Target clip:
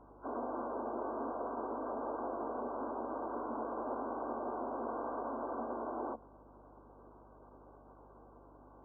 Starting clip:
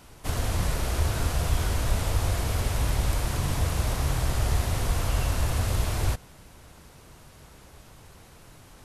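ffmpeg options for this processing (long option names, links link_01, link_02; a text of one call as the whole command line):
ffmpeg -i in.wav -filter_complex "[0:a]afftfilt=real='re*between(b*sr/4096,220,1200)':imag='im*between(b*sr/4096,220,1200)':win_size=4096:overlap=0.75,aeval=exprs='val(0)+0.001*(sin(2*PI*50*n/s)+sin(2*PI*2*50*n/s)/2+sin(2*PI*3*50*n/s)/3+sin(2*PI*4*50*n/s)/4+sin(2*PI*5*50*n/s)/5)':channel_layout=same,asplit=2[link_01][link_02];[link_02]asetrate=58866,aresample=44100,atempo=0.749154,volume=-11dB[link_03];[link_01][link_03]amix=inputs=2:normalize=0,volume=-2.5dB" out.wav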